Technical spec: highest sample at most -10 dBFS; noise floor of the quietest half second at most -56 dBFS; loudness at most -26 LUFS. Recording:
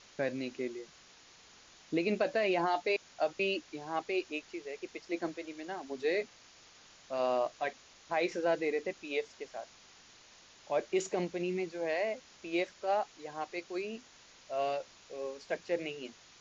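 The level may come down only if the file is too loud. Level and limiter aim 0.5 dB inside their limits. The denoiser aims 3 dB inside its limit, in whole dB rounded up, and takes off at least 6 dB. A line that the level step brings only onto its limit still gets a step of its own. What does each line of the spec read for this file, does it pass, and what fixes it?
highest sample -18.5 dBFS: pass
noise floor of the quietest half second -59 dBFS: pass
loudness -35.5 LUFS: pass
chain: none needed

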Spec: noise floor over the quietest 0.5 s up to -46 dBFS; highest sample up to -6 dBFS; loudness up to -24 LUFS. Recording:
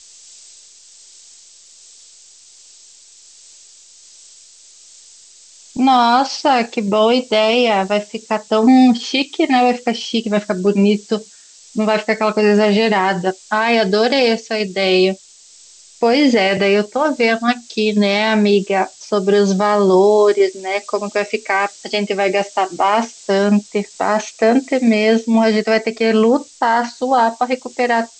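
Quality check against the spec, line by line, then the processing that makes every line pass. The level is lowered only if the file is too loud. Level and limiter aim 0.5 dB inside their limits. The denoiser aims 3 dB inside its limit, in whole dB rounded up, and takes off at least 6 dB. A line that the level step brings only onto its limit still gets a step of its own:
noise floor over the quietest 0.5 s -45 dBFS: fail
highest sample -4.0 dBFS: fail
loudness -15.5 LUFS: fail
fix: trim -9 dB

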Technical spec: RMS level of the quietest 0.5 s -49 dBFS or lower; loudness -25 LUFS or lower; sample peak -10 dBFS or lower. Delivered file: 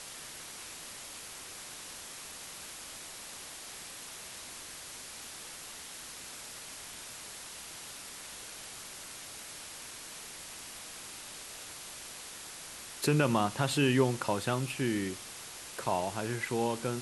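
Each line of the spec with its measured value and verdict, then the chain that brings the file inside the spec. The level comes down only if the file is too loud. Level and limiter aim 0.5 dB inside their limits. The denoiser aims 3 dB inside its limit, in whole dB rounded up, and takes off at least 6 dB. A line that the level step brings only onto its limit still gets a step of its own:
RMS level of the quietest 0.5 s -46 dBFS: fail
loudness -36.5 LUFS: pass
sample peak -13.5 dBFS: pass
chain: noise reduction 6 dB, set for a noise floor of -46 dBFS

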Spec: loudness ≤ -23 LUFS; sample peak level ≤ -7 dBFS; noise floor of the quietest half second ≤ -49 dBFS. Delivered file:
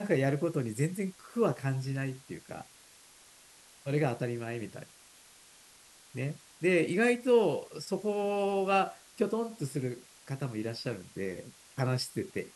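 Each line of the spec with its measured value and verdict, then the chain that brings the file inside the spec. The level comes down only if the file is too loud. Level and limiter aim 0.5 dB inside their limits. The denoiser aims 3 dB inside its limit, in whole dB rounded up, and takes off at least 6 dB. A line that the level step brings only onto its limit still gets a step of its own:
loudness -32.0 LUFS: pass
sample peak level -13.5 dBFS: pass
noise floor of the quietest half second -58 dBFS: pass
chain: none needed

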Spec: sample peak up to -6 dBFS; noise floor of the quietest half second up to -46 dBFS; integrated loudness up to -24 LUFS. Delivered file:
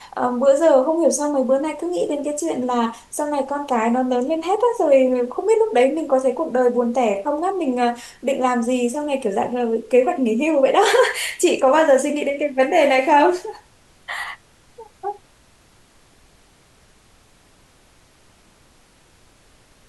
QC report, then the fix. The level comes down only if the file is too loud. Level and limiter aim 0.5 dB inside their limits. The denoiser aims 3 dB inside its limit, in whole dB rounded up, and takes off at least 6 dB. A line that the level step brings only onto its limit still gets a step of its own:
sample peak -5.0 dBFS: fail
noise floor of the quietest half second -54 dBFS: pass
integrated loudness -18.5 LUFS: fail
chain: trim -6 dB

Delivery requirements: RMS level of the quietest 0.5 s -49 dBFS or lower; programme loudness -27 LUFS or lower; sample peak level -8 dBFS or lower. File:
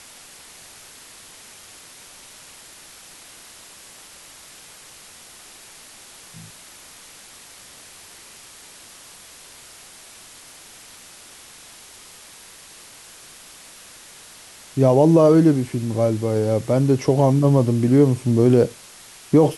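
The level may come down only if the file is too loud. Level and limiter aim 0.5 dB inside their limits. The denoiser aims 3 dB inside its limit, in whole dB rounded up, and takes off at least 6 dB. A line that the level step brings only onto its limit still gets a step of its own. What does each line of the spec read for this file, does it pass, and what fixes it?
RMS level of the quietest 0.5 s -44 dBFS: fail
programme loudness -17.5 LUFS: fail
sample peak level -4.5 dBFS: fail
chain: trim -10 dB

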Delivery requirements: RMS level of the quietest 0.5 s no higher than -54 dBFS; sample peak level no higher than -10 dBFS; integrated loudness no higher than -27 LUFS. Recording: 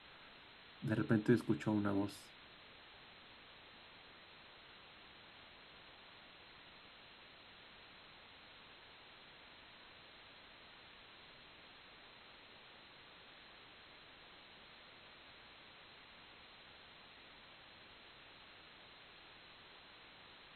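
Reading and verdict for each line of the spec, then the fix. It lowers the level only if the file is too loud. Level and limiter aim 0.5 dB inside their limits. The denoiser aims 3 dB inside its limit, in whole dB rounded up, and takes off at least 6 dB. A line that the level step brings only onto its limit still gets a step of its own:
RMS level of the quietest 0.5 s -60 dBFS: pass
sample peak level -19.0 dBFS: pass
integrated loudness -44.5 LUFS: pass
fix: none needed

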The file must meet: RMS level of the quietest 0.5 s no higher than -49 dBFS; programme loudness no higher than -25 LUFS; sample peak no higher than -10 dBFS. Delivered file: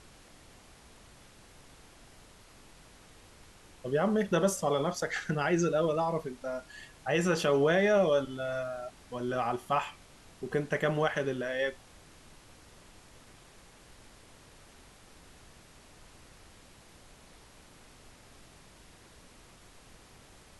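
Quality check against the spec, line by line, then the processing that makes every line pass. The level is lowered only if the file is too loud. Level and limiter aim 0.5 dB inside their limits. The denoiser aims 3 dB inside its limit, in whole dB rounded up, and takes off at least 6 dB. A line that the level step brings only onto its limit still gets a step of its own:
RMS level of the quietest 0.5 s -56 dBFS: pass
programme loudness -30.0 LUFS: pass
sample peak -14.0 dBFS: pass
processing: none needed

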